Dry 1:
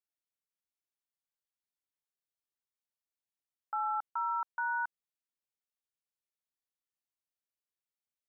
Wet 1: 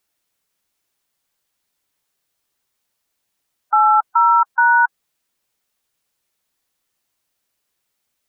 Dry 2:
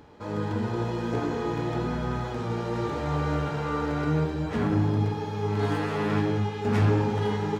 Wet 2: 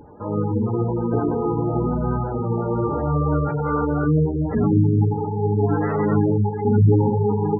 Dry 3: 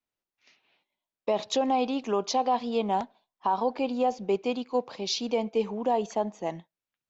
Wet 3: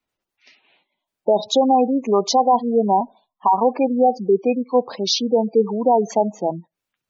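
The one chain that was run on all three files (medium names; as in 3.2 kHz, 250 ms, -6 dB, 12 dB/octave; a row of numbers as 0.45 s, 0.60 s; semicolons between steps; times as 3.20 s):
spectral gate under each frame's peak -15 dB strong; peak normalisation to -6 dBFS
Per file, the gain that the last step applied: +20.5 dB, +7.5 dB, +10.0 dB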